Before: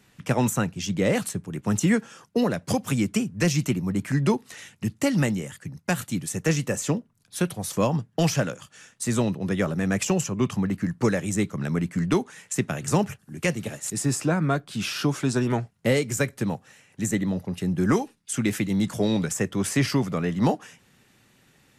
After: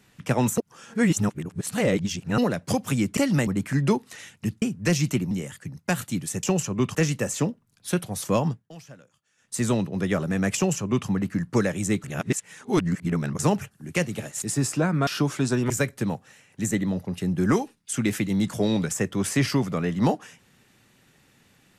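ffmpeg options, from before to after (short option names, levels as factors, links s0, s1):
-filter_complex "[0:a]asplit=15[s0][s1][s2][s3][s4][s5][s6][s7][s8][s9][s10][s11][s12][s13][s14];[s0]atrim=end=0.582[s15];[s1]atrim=start=0.578:end=2.382,asetpts=PTS-STARTPTS,areverse[s16];[s2]atrim=start=2.378:end=3.172[s17];[s3]atrim=start=5.008:end=5.312[s18];[s4]atrim=start=3.858:end=5.012[s19];[s5]atrim=start=3.168:end=3.862[s20];[s6]atrim=start=5.308:end=6.432[s21];[s7]atrim=start=10.038:end=10.562[s22];[s8]atrim=start=6.428:end=8.17,asetpts=PTS-STARTPTS,afade=t=out:st=1.562:d=0.18:silence=0.0794328[s23];[s9]atrim=start=8.17:end=8.85,asetpts=PTS-STARTPTS,volume=0.0794[s24];[s10]atrim=start=8.85:end=11.522,asetpts=PTS-STARTPTS,afade=t=in:d=0.18:silence=0.0794328[s25];[s11]atrim=start=11.518:end=12.872,asetpts=PTS-STARTPTS,areverse[s26];[s12]atrim=start=12.868:end=14.552[s27];[s13]atrim=start=14.908:end=15.542[s28];[s14]atrim=start=16.098[s29];[s15][s16]acrossfade=d=0.004:c1=hsin:c2=hsin[s30];[s30][s17]acrossfade=d=0.004:c1=hsin:c2=hsin[s31];[s31][s18]acrossfade=d=0.004:c1=hsin:c2=hsin[s32];[s32][s19]acrossfade=d=0.004:c1=hsin:c2=hsin[s33];[s33][s20]acrossfade=d=0.004:c1=hsin:c2=hsin[s34];[s34][s21]acrossfade=d=0.004:c1=hsin:c2=hsin[s35];[s35][s22]acrossfade=d=0.004:c1=hsin:c2=hsin[s36];[s23][s24][s25]concat=n=3:v=0:a=1[s37];[s36][s37]acrossfade=d=0.004:c1=hsin:c2=hsin[s38];[s38][s26]acrossfade=d=0.004:c1=hsin:c2=hsin[s39];[s39][s27]acrossfade=d=0.004:c1=hsin:c2=hsin[s40];[s40][s28]acrossfade=d=0.004:c1=hsin:c2=hsin[s41];[s41][s29]acrossfade=d=0.004:c1=hsin:c2=hsin"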